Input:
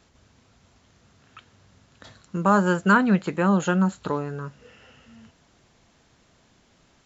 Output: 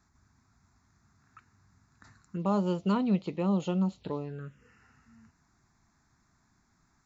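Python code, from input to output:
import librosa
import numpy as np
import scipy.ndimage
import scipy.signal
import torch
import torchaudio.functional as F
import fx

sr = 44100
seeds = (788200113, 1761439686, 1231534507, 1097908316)

y = fx.env_phaser(x, sr, low_hz=510.0, high_hz=1600.0, full_db=-22.5)
y = F.gain(torch.from_numpy(y), -6.5).numpy()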